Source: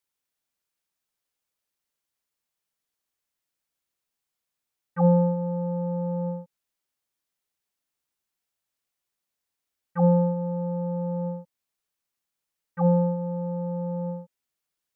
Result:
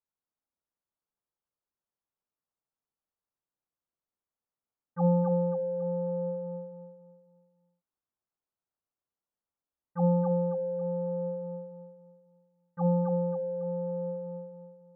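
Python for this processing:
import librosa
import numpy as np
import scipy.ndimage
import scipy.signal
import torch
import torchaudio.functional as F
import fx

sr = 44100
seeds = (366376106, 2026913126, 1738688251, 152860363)

p1 = scipy.signal.sosfilt(scipy.signal.butter(4, 1300.0, 'lowpass', fs=sr, output='sos'), x)
p2 = p1 + fx.echo_feedback(p1, sr, ms=273, feedback_pct=38, wet_db=-4, dry=0)
y = p2 * 10.0 ** (-5.5 / 20.0)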